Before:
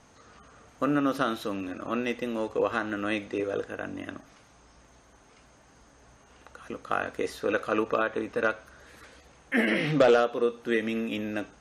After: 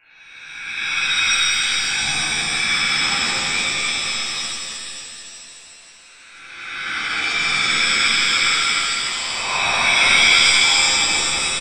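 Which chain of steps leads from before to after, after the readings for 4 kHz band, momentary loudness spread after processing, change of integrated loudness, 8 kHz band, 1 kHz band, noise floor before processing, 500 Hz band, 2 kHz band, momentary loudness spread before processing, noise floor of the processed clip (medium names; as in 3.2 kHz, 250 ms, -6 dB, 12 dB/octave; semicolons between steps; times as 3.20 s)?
+26.0 dB, 16 LU, +12.5 dB, +30.5 dB, +8.0 dB, -58 dBFS, -9.0 dB, +16.5 dB, 13 LU, -44 dBFS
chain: reverse spectral sustain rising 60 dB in 1.70 s; on a send: delay 304 ms -4 dB; on the sum: frequency inversion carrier 2.8 kHz; pitch-shifted reverb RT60 2.5 s, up +7 st, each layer -2 dB, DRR -11.5 dB; trim -10.5 dB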